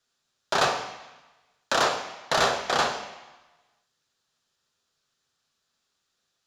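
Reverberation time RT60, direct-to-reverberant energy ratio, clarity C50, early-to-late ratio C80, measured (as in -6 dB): 1.1 s, 5.5 dB, 9.0 dB, 10.5 dB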